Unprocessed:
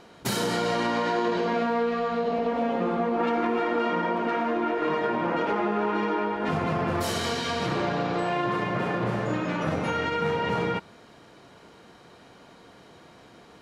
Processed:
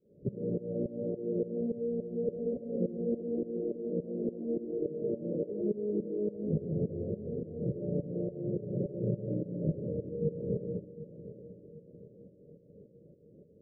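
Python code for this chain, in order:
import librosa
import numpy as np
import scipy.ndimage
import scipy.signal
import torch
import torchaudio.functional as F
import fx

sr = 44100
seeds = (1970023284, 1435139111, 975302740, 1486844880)

y = fx.tremolo_shape(x, sr, shape='saw_up', hz=3.5, depth_pct=95)
y = scipy.signal.sosfilt(scipy.signal.cheby1(6, 6, 590.0, 'lowpass', fs=sr, output='sos'), y)
y = fx.echo_feedback(y, sr, ms=753, feedback_pct=51, wet_db=-14)
y = F.gain(torch.from_numpy(y), 2.0).numpy()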